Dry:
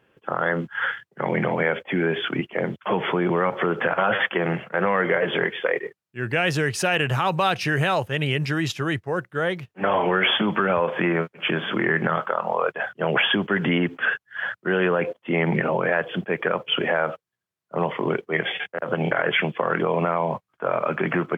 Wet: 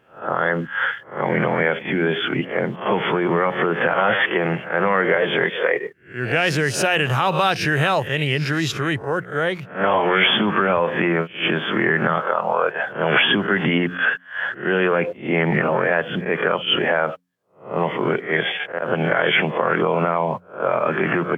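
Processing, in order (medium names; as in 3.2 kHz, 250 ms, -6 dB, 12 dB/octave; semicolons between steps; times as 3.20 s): reverse spectral sustain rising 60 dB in 0.36 s; de-hum 89.41 Hz, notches 3; trim +2 dB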